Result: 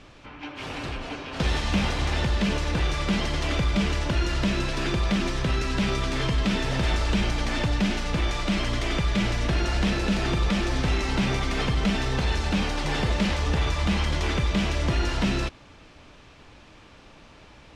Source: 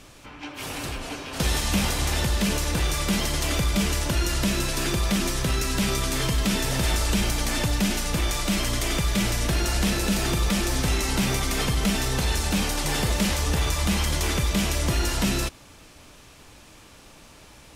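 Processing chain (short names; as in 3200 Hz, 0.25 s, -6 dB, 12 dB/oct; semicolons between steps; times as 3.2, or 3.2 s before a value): LPF 3800 Hz 12 dB/oct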